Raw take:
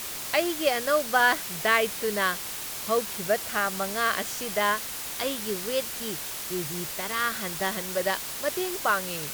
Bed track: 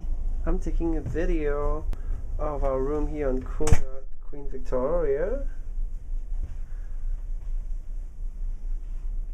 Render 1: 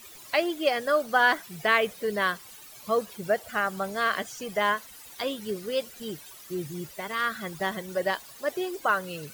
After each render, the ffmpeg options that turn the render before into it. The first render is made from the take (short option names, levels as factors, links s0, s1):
-af "afftdn=nr=16:nf=-35"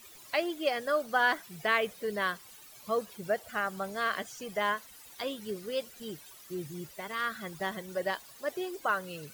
-af "volume=0.562"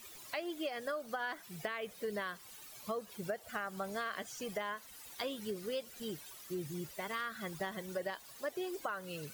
-af "alimiter=limit=0.0794:level=0:latency=1:release=372,acompressor=threshold=0.0178:ratio=6"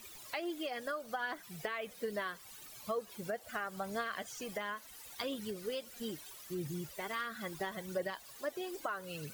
-af "aphaser=in_gain=1:out_gain=1:delay=4.4:decay=0.34:speed=0.75:type=triangular"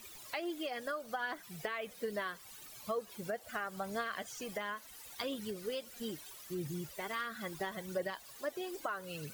-af anull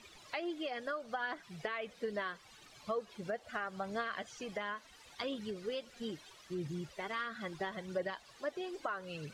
-af "lowpass=4900"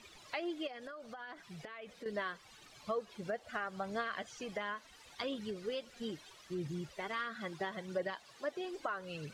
-filter_complex "[0:a]asettb=1/sr,asplit=3[s0][s1][s2];[s0]atrim=end=0.674[s3];[s1]atrim=start=0.67:end=2.06,asetpts=PTS-STARTPTS,afade=t=in:d=0.004:c=qsin,afade=t=out:st=1.386:d=0.004:c=qsin,acompressor=threshold=0.00631:ratio=6:attack=3.2:release=140:knee=1:detection=peak[s4];[s2]atrim=start=2.056[s5];[s3][s4]acrossfade=d=0.004:c1=hsin:c2=qsin[s6];[s6][s5]acrossfade=d=0.004:c1=qsin:c2=hsin,asettb=1/sr,asplit=3[s7][s8][s9];[s7]atrim=end=7.264[s10];[s8]atrim=start=7.26:end=8.65,asetpts=PTS-STARTPTS,afade=t=in:d=0.004:c=qsin,afade=t=out:st=1.386:d=0.004:c=qsin,highpass=99[s11];[s9]atrim=start=8.646[s12];[s10][s11]acrossfade=d=0.004:c1=hsin:c2=qsin[s13];[s13][s12]acrossfade=d=0.004:c1=qsin:c2=hsin"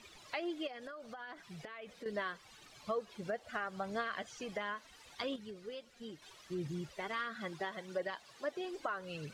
-filter_complex "[0:a]asettb=1/sr,asplit=3[s0][s1][s2];[s0]atrim=end=7.604[s3];[s1]atrim=start=7.6:end=8.14,asetpts=PTS-STARTPTS,afade=t=in:d=0.004:c=qsin,afade=t=out:st=0.536:d=0.004:c=qsin,lowshelf=f=170:g=-11.5[s4];[s2]atrim=start=8.136[s5];[s3][s4]acrossfade=d=0.004:c1=hsin:c2=qsin[s6];[s6][s5]acrossfade=d=0.004:c1=qsin:c2=hsin,asplit=3[s7][s8][s9];[s7]atrim=end=5.362[s10];[s8]atrim=start=5.358:end=6.222,asetpts=PTS-STARTPTS,volume=0.473[s11];[s9]atrim=start=6.218[s12];[s10][s11]acrossfade=d=0.004:c1=hsin:c2=hsin[s13];[s13][s12]acrossfade=d=0.004:c1=hsin:c2=hsin"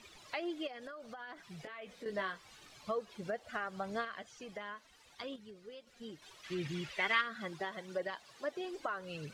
-filter_complex "[0:a]asettb=1/sr,asplit=3[s0][s1][s2];[s0]atrim=end=1.624[s3];[s1]atrim=start=1.62:end=2.76,asetpts=PTS-STARTPTS,afade=t=in:d=0.004:c=qsin,afade=t=out:st=1.136:d=0.004:c=qsin,asplit=2[s4][s5];[s5]adelay=21,volume=0.447[s6];[s4][s6]amix=inputs=2:normalize=0,atrim=end_sample=50274[s7];[s2]atrim=start=2.756[s8];[s3][s7]acrossfade=d=0.004:c1=hsin:c2=qsin[s9];[s9][s8]acrossfade=d=0.004:c1=qsin:c2=hsin,asplit=3[s10][s11][s12];[s10]afade=t=out:st=6.43:d=0.02[s13];[s11]equalizer=f=2400:t=o:w=1.9:g=13.5,afade=t=in:st=6.43:d=0.02,afade=t=out:st=7.2:d=0.02[s14];[s12]afade=t=in:st=7.2:d=0.02[s15];[s13][s14][s15]amix=inputs=3:normalize=0,asplit=3[s16][s17][s18];[s16]atrim=end=4.052[s19];[s17]atrim=start=4.048:end=5.872,asetpts=PTS-STARTPTS,volume=0.562[s20];[s18]atrim=start=5.868[s21];[s19][s20]acrossfade=d=0.004:c1=hsin:c2=hsin[s22];[s22][s21]acrossfade=d=0.004:c1=hsin:c2=hsin"